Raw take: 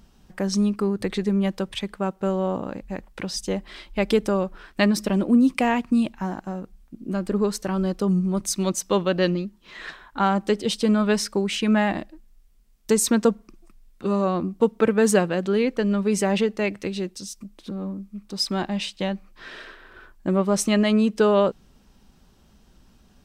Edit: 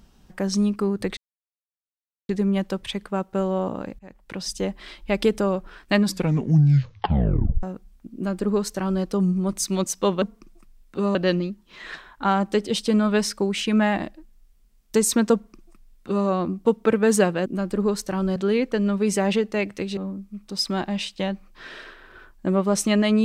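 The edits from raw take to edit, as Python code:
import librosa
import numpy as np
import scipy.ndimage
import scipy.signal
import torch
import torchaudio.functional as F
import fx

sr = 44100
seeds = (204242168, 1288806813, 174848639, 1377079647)

y = fx.edit(x, sr, fx.insert_silence(at_s=1.17, length_s=1.12),
    fx.fade_in_from(start_s=2.87, length_s=0.5, floor_db=-20.5),
    fx.tape_stop(start_s=4.87, length_s=1.64),
    fx.duplicate(start_s=7.02, length_s=0.9, to_s=15.41),
    fx.duplicate(start_s=13.29, length_s=0.93, to_s=9.1),
    fx.cut(start_s=17.02, length_s=0.76), tone=tone)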